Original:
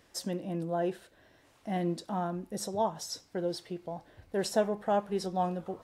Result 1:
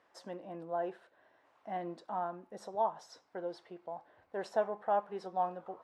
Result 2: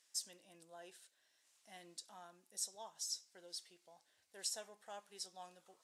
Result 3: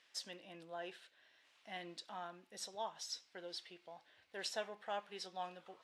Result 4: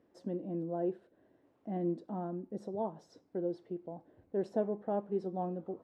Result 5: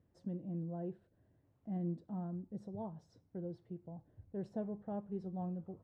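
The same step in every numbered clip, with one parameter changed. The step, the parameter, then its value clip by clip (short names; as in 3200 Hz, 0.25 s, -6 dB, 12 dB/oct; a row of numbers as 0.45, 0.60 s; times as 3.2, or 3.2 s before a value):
band-pass, frequency: 960, 7800, 3000, 310, 110 Hz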